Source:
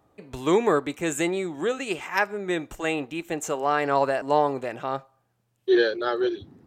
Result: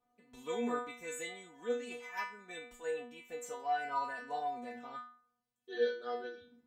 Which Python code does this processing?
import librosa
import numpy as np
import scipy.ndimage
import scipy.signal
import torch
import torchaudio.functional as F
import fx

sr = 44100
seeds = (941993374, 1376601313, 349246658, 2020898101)

y = fx.stiff_resonator(x, sr, f0_hz=240.0, decay_s=0.52, stiffness=0.002)
y = F.gain(torch.from_numpy(y), 2.0).numpy()